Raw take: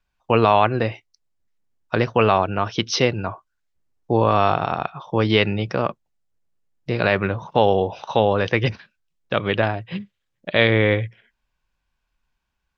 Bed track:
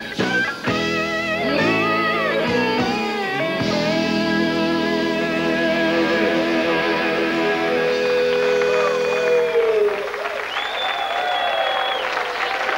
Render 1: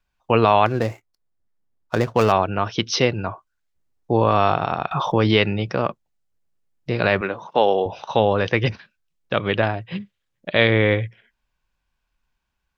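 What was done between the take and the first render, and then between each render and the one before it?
0.66–2.32 median filter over 15 samples; 4.91–5.34 fast leveller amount 70%; 7.21–7.86 HPF 280 Hz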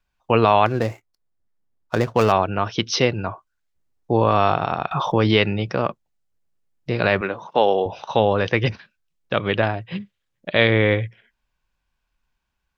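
nothing audible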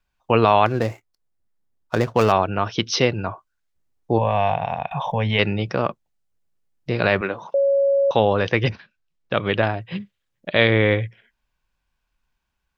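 4.18–5.39 fixed phaser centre 1300 Hz, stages 6; 7.54–8.11 bleep 555 Hz -14.5 dBFS; 8.69–9.36 air absorption 69 m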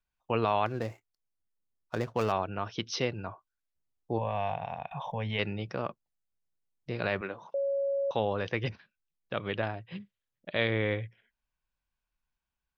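gain -12 dB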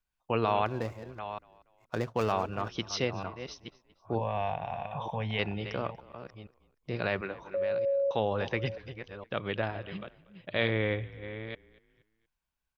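reverse delay 0.462 s, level -11 dB; frequency-shifting echo 0.237 s, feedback 39%, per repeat -37 Hz, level -21.5 dB

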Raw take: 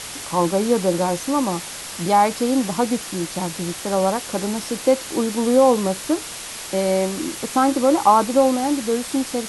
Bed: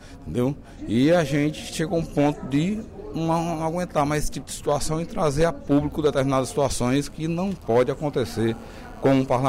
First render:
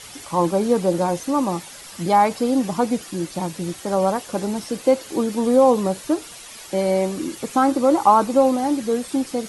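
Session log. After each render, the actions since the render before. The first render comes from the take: denoiser 10 dB, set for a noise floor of -33 dBFS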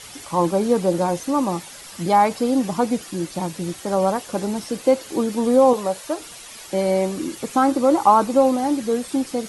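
5.73–6.2 resonant low shelf 420 Hz -7.5 dB, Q 1.5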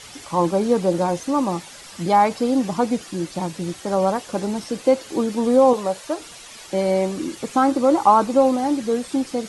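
LPF 8800 Hz 12 dB/oct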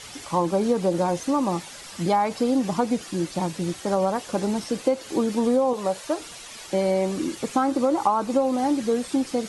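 compressor 10:1, threshold -17 dBFS, peak gain reduction 9.5 dB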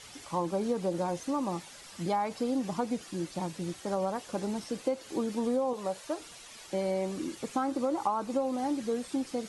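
gain -8.5 dB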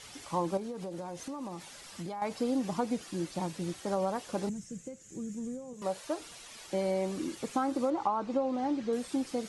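0.57–2.22 compressor 5:1, threshold -36 dBFS; 4.49–5.82 EQ curve 120 Hz 0 dB, 170 Hz +5 dB, 270 Hz -11 dB, 480 Hz -14 dB, 920 Hz -25 dB, 1800 Hz -12 dB, 4500 Hz -20 dB, 7000 Hz +4 dB, 10000 Hz -12 dB; 7.9–8.93 air absorption 120 m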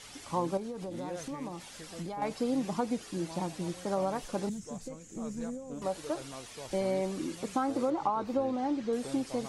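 add bed -24 dB

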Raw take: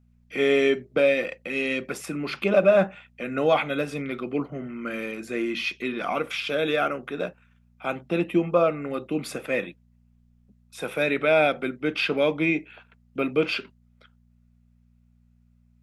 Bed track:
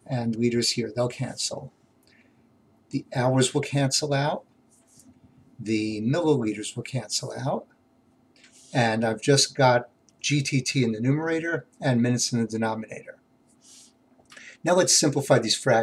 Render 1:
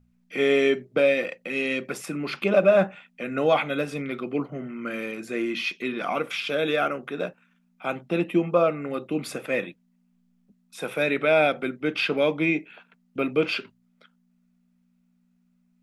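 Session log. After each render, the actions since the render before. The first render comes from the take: de-hum 60 Hz, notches 2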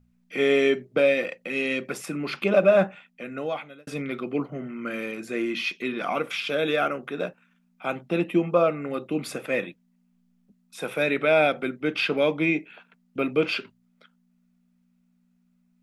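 2.82–3.87 fade out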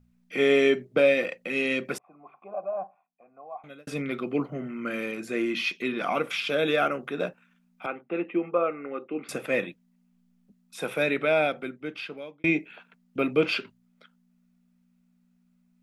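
1.98–3.64 vocal tract filter a; 7.86–9.29 speaker cabinet 380–2300 Hz, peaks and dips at 630 Hz -8 dB, 940 Hz -6 dB, 1700 Hz -5 dB; 10.84–12.44 fade out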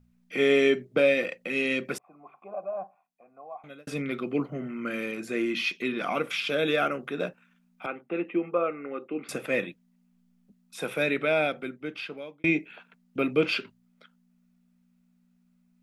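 dynamic EQ 820 Hz, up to -3 dB, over -38 dBFS, Q 1.1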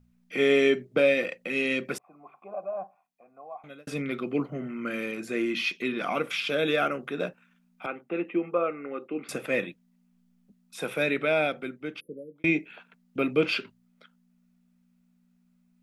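12–12.36 spectral delete 570–9100 Hz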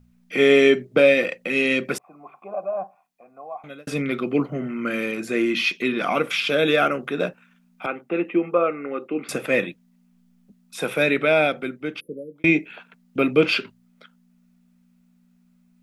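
gain +6.5 dB

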